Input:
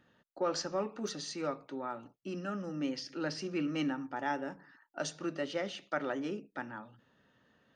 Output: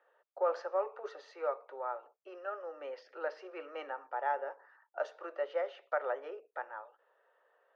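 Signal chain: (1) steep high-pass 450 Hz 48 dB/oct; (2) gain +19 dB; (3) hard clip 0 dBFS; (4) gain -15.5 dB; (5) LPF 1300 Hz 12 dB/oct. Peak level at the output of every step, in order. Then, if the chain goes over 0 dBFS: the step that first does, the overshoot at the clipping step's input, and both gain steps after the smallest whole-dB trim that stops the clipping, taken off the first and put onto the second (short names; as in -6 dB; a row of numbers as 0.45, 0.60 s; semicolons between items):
-21.0, -2.0, -2.0, -17.5, -19.5 dBFS; no overload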